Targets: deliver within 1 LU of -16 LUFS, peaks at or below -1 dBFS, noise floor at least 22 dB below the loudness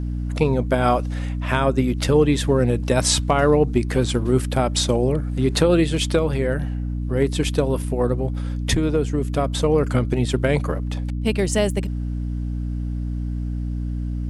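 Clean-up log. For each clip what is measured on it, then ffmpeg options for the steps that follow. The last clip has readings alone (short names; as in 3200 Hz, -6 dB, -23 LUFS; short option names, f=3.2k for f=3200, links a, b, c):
hum 60 Hz; harmonics up to 300 Hz; hum level -23 dBFS; loudness -21.5 LUFS; peak -3.0 dBFS; loudness target -16.0 LUFS
-> -af "bandreject=f=60:t=h:w=4,bandreject=f=120:t=h:w=4,bandreject=f=180:t=h:w=4,bandreject=f=240:t=h:w=4,bandreject=f=300:t=h:w=4"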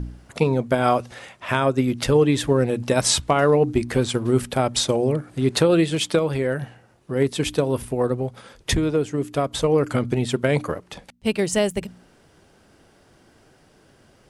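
hum none; loudness -21.5 LUFS; peak -4.0 dBFS; loudness target -16.0 LUFS
-> -af "volume=5.5dB,alimiter=limit=-1dB:level=0:latency=1"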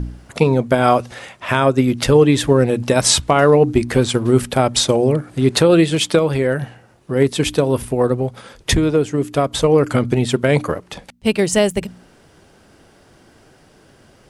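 loudness -16.5 LUFS; peak -1.0 dBFS; noise floor -51 dBFS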